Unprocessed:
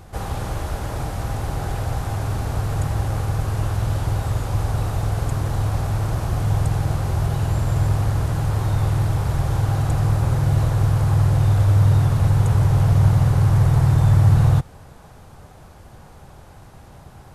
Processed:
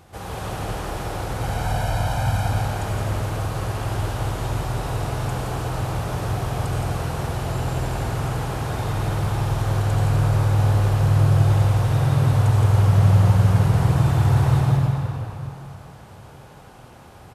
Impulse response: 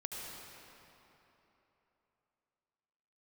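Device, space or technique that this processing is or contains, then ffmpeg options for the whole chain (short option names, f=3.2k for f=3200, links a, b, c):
PA in a hall: -filter_complex "[0:a]asettb=1/sr,asplit=3[a][b][c];[a]atrim=end=1.414[d];[b]atrim=start=1.41:end=2.49,asetpts=PTS-STARTPTS,afade=t=in:d=0.004:c=qsin,afade=t=out:st=1.076:d=0.004:c=qsin,aecho=1:1:1.3:0.97,atrim=end_sample=47628[e];[c]atrim=start=2.486[f];[d][e]acrossfade=d=0.004:c1=hsin:c2=qsin[g];[g][f]acrossfade=d=0.004:c1=qsin:c2=hsin,highpass=f=130:p=1,equalizer=f=2.9k:t=o:w=0.72:g=3,aecho=1:1:168:0.562[h];[1:a]atrim=start_sample=2205[i];[h][i]afir=irnorm=-1:irlink=0"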